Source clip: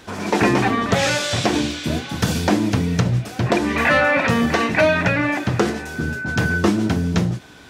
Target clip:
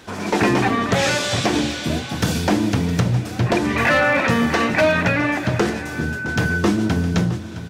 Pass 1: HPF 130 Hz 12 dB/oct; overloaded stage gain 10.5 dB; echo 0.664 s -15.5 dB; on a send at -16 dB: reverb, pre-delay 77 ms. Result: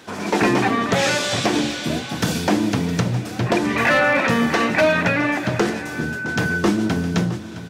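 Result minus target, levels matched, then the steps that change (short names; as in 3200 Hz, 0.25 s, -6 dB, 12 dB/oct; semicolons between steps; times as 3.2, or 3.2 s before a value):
125 Hz band -2.5 dB
change: HPF 36 Hz 12 dB/oct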